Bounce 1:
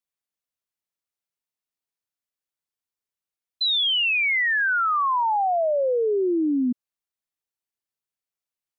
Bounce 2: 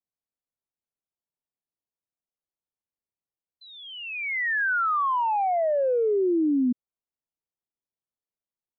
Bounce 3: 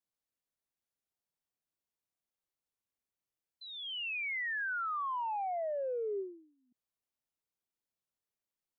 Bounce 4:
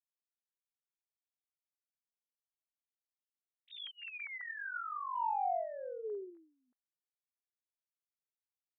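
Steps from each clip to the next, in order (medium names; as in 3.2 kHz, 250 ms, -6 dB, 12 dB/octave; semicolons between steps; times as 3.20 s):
local Wiener filter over 25 samples; low-pass 2 kHz 24 dB/octave
reverse; compression 8:1, threshold -35 dBFS, peak gain reduction 13.5 dB; reverse; endings held to a fixed fall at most 110 dB/s
formants replaced by sine waves; trim -3 dB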